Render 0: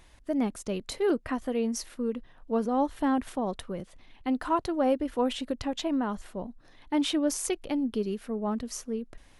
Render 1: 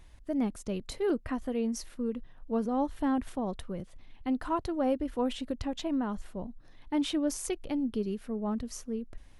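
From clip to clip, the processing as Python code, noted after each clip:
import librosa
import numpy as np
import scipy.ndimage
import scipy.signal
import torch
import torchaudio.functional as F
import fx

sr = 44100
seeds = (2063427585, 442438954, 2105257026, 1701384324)

y = fx.low_shelf(x, sr, hz=180.0, db=9.5)
y = y * 10.0 ** (-5.0 / 20.0)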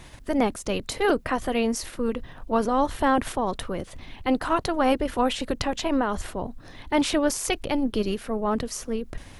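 y = fx.spec_clip(x, sr, under_db=15)
y = y * 10.0 ** (7.5 / 20.0)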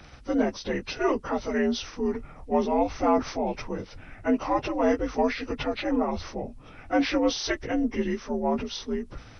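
y = fx.partial_stretch(x, sr, pct=84)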